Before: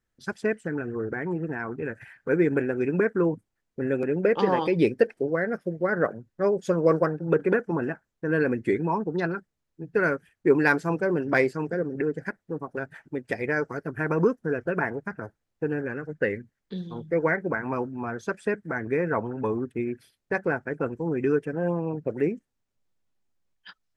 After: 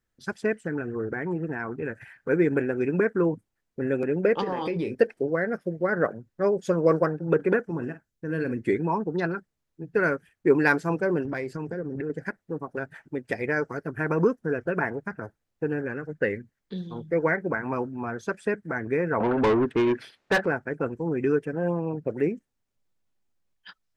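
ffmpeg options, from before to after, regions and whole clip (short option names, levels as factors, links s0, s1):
-filter_complex "[0:a]asettb=1/sr,asplit=3[s0][s1][s2];[s0]atrim=end=4.414[s3];[s1]atrim=start=4.41:end=4.95,asetpts=PTS-STARTPTS,afade=t=in:d=0.004:c=qsin,afade=t=out:st=0.536:d=0.004:c=qsin,asplit=2[s4][s5];[s5]adelay=28,volume=0.299[s6];[s4][s6]amix=inputs=2:normalize=0,atrim=end_sample=23814,acompressor=threshold=0.0631:ratio=10:attack=3.2:release=140:knee=1:detection=peak[s7];[s2]atrim=start=4.946[s8];[s3][s7]acrossfade=d=0.004:c1=hsin:c2=qsin[s9];[s9][s8]acrossfade=d=0.004:c1=qsin:c2=hsin,asettb=1/sr,asplit=3[s10][s11][s12];[s10]atrim=end=7.694[s13];[s11]atrim=start=7.69:end=8.57,asetpts=PTS-STARTPTS,afade=t=in:d=0.004:c=qsin,afade=t=out:st=0.876:d=0.004:c=qsin,equalizer=f=940:w=0.42:g=-9,asplit=2[s14][s15];[s15]adelay=49,volume=0.251[s16];[s14][s16]amix=inputs=2:normalize=0,atrim=end_sample=38808[s17];[s12]atrim=start=8.566[s18];[s13][s17]acrossfade=d=0.004:c1=hsin:c2=qsin[s19];[s19][s18]acrossfade=d=0.004:c1=qsin:c2=hsin,asettb=1/sr,asplit=3[s20][s21][s22];[s20]atrim=end=11.254[s23];[s21]atrim=start=11.25:end=12.1,asetpts=PTS-STARTPTS,afade=t=in:d=0.004:c=qsin,afade=t=out:st=0.846:d=0.004:c=qsin,lowshelf=f=140:g=8.5,acompressor=threshold=0.0398:ratio=5:attack=3.2:release=140:knee=1:detection=peak[s24];[s22]atrim=start=12.096[s25];[s23][s24]acrossfade=d=0.004:c1=hsin:c2=qsin[s26];[s26][s25]acrossfade=d=0.004:c1=qsin:c2=hsin,asettb=1/sr,asplit=3[s27][s28][s29];[s27]atrim=end=19.204[s30];[s28]atrim=start=19.2:end=20.46,asetpts=PTS-STARTPTS,afade=t=in:d=0.004:c=qsin,afade=t=out:st=1.256:d=0.004:c=qsin,aemphasis=mode=reproduction:type=50fm,asplit=2[s31][s32];[s32]highpass=f=720:p=1,volume=20,asoftclip=type=tanh:threshold=0.211[s33];[s31][s33]amix=inputs=2:normalize=0,lowpass=f=3100:p=1,volume=0.501[s34];[s29]atrim=start=20.456[s35];[s30][s34]acrossfade=d=0.004:c1=hsin:c2=qsin[s36];[s36][s35]acrossfade=d=0.004:c1=qsin:c2=hsin"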